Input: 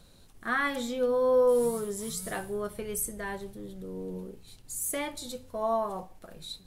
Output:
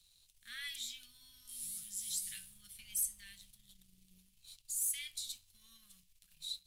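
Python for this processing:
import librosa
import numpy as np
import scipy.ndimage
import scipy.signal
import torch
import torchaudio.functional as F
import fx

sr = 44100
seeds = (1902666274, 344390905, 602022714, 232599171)

y = scipy.signal.sosfilt(scipy.signal.cheby2(4, 80, [350.0, 790.0], 'bandstop', fs=sr, output='sos'), x)
y = fx.low_shelf_res(y, sr, hz=140.0, db=-13.0, q=1.5)
y = fx.leveller(y, sr, passes=1)
y = y * 10.0 ** (-4.5 / 20.0)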